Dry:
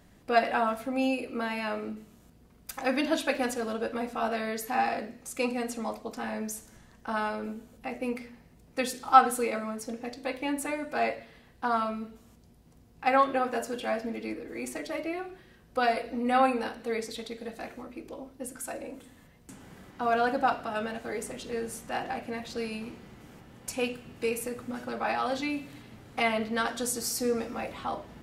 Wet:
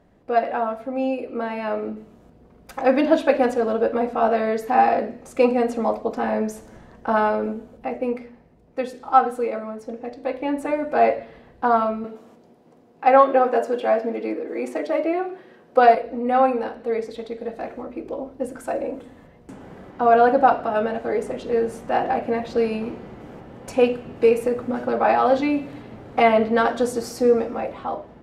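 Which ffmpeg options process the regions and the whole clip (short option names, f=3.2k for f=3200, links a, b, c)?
-filter_complex "[0:a]asettb=1/sr,asplit=3[a][b][c];[a]atrim=end=12.044[d];[b]atrim=start=12.04:end=15.95,asetpts=PTS-STARTPTS,afade=t=in:d=0.004:c=qsin,afade=t=out:st=3.906:d=0.004:c=qsin,highpass=240,acontrast=74[e];[c]atrim=start=15.946[f];[d][e]acrossfade=d=0.004:c1=hsin:c2=qsin[g];[g][f]acrossfade=d=0.004:c1=qsin:c2=hsin,lowpass=f=1.9k:p=1,equalizer=f=540:w=0.73:g=8,dynaudnorm=f=420:g=7:m=11.5dB,volume=-2dB"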